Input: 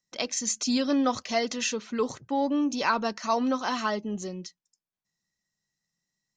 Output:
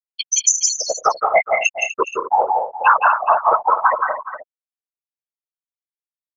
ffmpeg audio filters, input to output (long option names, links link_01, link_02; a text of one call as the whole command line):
ffmpeg -i in.wav -filter_complex "[0:a]highpass=870,afftfilt=real='re*gte(hypot(re,im),0.158)':imag='im*gte(hypot(re,im),0.158)':win_size=1024:overlap=0.75,equalizer=frequency=5200:width=4.3:gain=6,asplit=2[link_01][link_02];[link_02]acompressor=threshold=-41dB:ratio=12,volume=-0.5dB[link_03];[link_01][link_03]amix=inputs=2:normalize=0,afftfilt=real='hypot(re,im)*cos(2*PI*random(0))':imag='hypot(re,im)*sin(2*PI*random(1))':win_size=512:overlap=0.75,aecho=1:1:169|201|246|418|474:0.631|0.282|0.237|0.178|0.15,alimiter=level_in=23dB:limit=-1dB:release=50:level=0:latency=1,volume=-1dB" out.wav